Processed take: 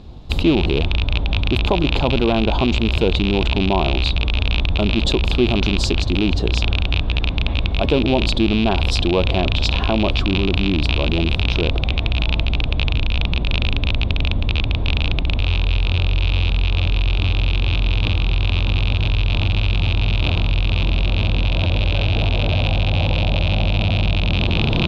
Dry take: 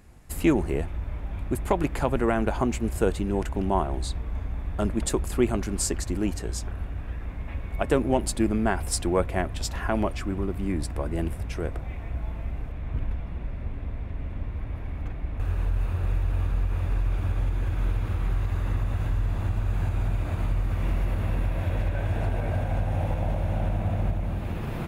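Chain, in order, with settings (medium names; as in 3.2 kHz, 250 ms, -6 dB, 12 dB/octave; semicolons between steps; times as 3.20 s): rattle on loud lows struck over -29 dBFS, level -15 dBFS; FFT filter 340 Hz 0 dB, 1 kHz -3 dB, 1.9 kHz -17 dB, 3.7 kHz +7 dB, 9 kHz -27 dB; in parallel at +2 dB: compressor with a negative ratio -31 dBFS, ratio -1; on the sum: trim +4.5 dB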